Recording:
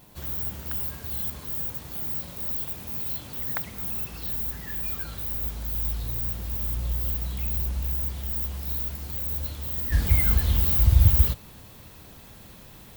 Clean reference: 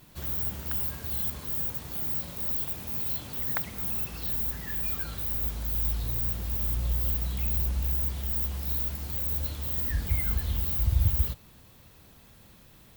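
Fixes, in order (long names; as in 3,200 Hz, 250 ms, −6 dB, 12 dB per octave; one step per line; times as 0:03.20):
hum removal 104.5 Hz, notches 10
downward expander −39 dBFS, range −21 dB
level 0 dB, from 0:09.92 −7 dB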